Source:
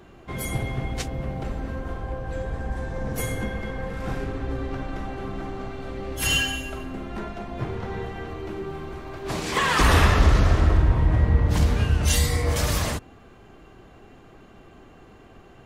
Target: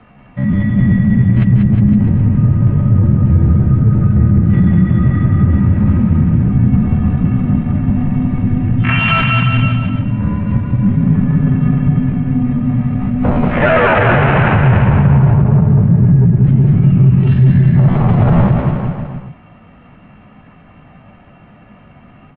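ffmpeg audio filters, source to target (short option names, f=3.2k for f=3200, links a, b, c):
-filter_complex "[0:a]afwtdn=0.0447,highpass=64,areverse,acompressor=threshold=-30dB:ratio=6,areverse,afreqshift=-280,tremolo=f=190:d=0.261,acrossover=split=1700[a][b];[b]aeval=exprs='0.0188*(abs(mod(val(0)/0.0188+3,4)-2)-1)':c=same[c];[a][c]amix=inputs=2:normalize=0,asetrate=55563,aresample=44100,atempo=0.793701,asoftclip=type=tanh:threshold=-29.5dB,atempo=0.7,aecho=1:1:190|361|514.9|653.4|778.1:0.631|0.398|0.251|0.158|0.1,highpass=f=160:t=q:w=0.5412,highpass=f=160:t=q:w=1.307,lowpass=f=3.1k:t=q:w=0.5176,lowpass=f=3.1k:t=q:w=0.7071,lowpass=f=3.1k:t=q:w=1.932,afreqshift=-390,alimiter=level_in=28dB:limit=-1dB:release=50:level=0:latency=1,volume=-1dB"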